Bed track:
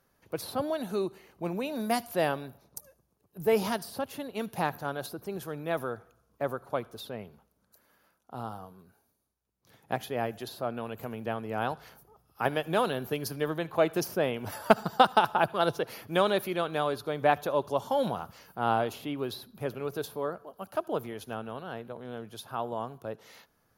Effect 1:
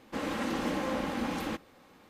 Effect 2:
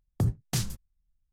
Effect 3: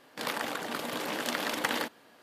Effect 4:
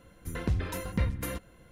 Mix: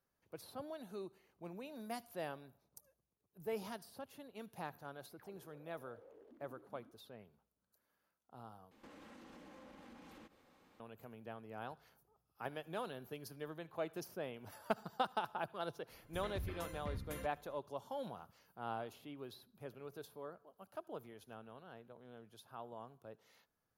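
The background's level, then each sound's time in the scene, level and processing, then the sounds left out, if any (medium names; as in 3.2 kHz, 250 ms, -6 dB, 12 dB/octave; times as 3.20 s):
bed track -16 dB
5.02 s: add 3 -13.5 dB + auto-wah 200–2400 Hz, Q 10, down, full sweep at -27 dBFS
8.71 s: replace with 1 -10.5 dB + compression 10:1, threshold -43 dBFS
15.88 s: add 4 -12 dB + peak limiter -23 dBFS
not used: 2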